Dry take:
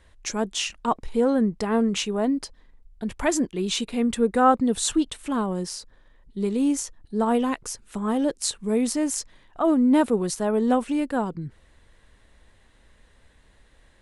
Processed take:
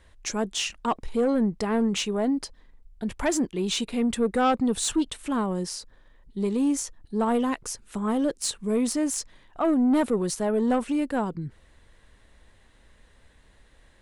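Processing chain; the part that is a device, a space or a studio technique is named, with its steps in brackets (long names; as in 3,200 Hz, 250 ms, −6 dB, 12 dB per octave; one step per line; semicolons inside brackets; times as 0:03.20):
saturation between pre-emphasis and de-emphasis (high-shelf EQ 7,900 Hz +8 dB; soft clipping −16 dBFS, distortion −15 dB; high-shelf EQ 7,900 Hz −8 dB)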